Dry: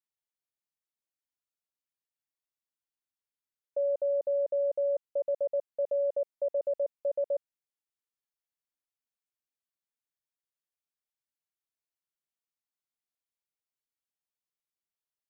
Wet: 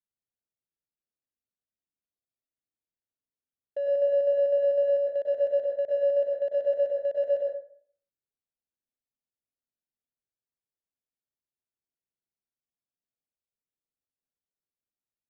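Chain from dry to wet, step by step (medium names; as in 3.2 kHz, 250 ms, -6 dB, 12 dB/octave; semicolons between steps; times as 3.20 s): local Wiener filter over 41 samples; plate-style reverb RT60 0.55 s, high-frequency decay 0.55×, pre-delay 90 ms, DRR -1 dB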